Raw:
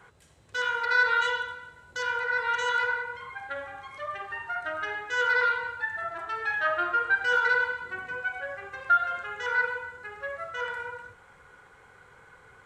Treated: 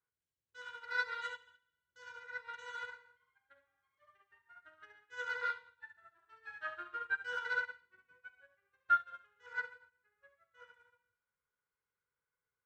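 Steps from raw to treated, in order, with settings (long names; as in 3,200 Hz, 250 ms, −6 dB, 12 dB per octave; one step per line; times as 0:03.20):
parametric band 730 Hz −13 dB 0.22 octaves
on a send: delay with a high-pass on its return 69 ms, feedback 62%, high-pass 1,900 Hz, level −3.5 dB
on the sum: expander for the loud parts 2.5 to 1, over −40 dBFS
level −6 dB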